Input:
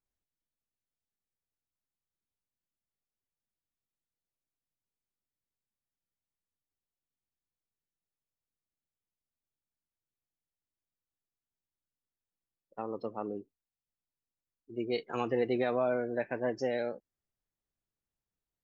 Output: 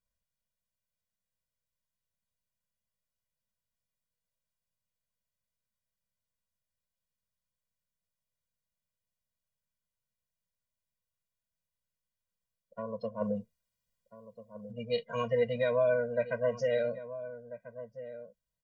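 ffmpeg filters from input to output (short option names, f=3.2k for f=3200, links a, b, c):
-filter_complex "[0:a]asplit=3[a][b][c];[a]afade=t=out:st=13.2:d=0.02[d];[b]acontrast=79,afade=t=in:st=13.2:d=0.02,afade=t=out:st=14.71:d=0.02[e];[c]afade=t=in:st=14.71:d=0.02[f];[d][e][f]amix=inputs=3:normalize=0,asplit=2[g][h];[h]adelay=1341,volume=-13dB,highshelf=f=4k:g=-30.2[i];[g][i]amix=inputs=2:normalize=0,afftfilt=real='re*eq(mod(floor(b*sr/1024/230),2),0)':imag='im*eq(mod(floor(b*sr/1024/230),2),0)':win_size=1024:overlap=0.75,volume=4dB"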